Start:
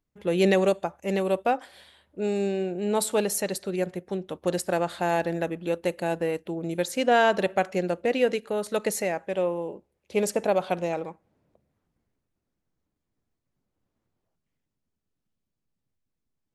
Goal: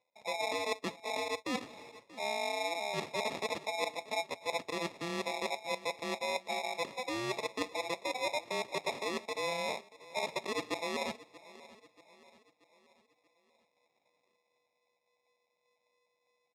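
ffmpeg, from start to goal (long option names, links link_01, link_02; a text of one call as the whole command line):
ffmpeg -i in.wav -filter_complex "[0:a]afftfilt=real='real(if(between(b,1,1008),(2*floor((b-1)/48)+1)*48-b,b),0)':imag='imag(if(between(b,1,1008),(2*floor((b-1)/48)+1)*48-b,b),0)*if(between(b,1,1008),-1,1)':win_size=2048:overlap=0.75,tiltshelf=frequency=720:gain=5,areverse,acompressor=threshold=-34dB:ratio=12,areverse,acrusher=samples=29:mix=1:aa=0.000001,asplit=2[link_01][link_02];[link_02]aecho=0:1:633|1266|1899|2532:0.112|0.0539|0.0259|0.0124[link_03];[link_01][link_03]amix=inputs=2:normalize=0,crystalizer=i=5:c=0,highpass=170,lowpass=3600" out.wav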